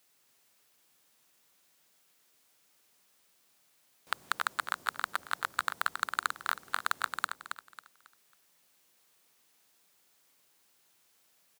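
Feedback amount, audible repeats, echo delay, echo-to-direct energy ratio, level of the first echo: 30%, 3, 0.273 s, -6.5 dB, -7.0 dB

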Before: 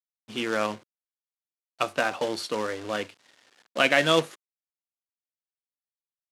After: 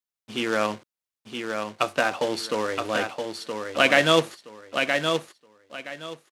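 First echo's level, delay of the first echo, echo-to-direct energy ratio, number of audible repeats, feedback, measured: -5.5 dB, 0.971 s, -5.5 dB, 3, 23%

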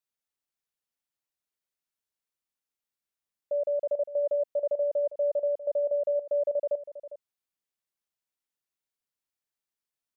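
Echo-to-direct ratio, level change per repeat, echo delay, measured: -13.0 dB, no steady repeat, 0.403 s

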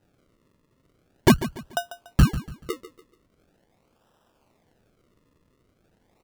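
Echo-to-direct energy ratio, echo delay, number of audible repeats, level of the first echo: -13.5 dB, 0.144 s, 3, -14.0 dB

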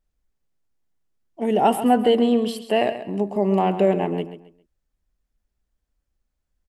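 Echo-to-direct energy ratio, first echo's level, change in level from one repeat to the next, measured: -11.5 dB, -12.0 dB, -11.0 dB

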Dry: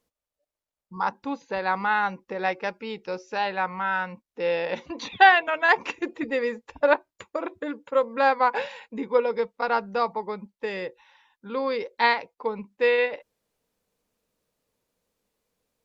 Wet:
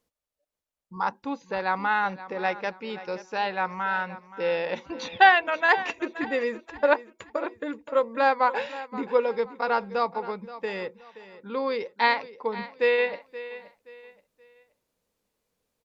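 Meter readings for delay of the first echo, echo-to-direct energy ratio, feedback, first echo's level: 0.525 s, -15.0 dB, 32%, -15.5 dB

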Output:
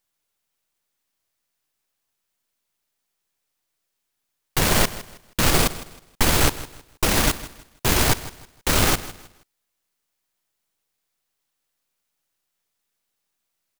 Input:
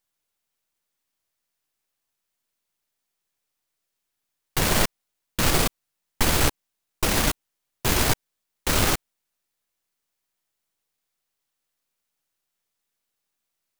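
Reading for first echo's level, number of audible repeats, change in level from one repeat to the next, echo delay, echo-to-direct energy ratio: -16.5 dB, 2, -10.5 dB, 0.159 s, -16.0 dB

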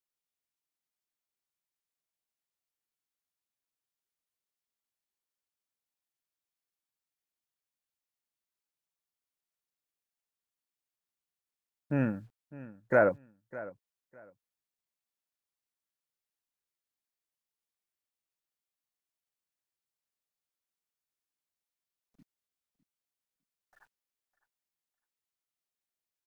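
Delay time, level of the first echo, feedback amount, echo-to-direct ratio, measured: 0.605 s, -17.5 dB, 21%, -17.5 dB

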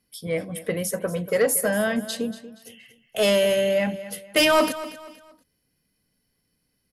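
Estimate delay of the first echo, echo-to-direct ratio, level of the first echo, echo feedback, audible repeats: 0.236 s, -14.5 dB, -15.0 dB, 34%, 3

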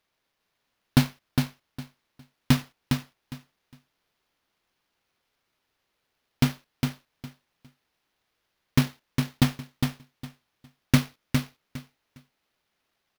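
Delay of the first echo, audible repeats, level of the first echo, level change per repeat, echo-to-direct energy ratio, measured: 0.408 s, 3, -5.0 dB, -14.0 dB, -5.0 dB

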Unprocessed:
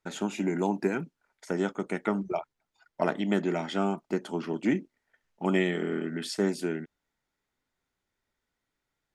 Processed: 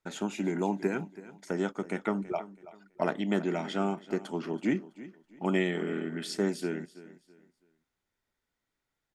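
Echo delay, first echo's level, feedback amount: 0.328 s, -17.0 dB, 30%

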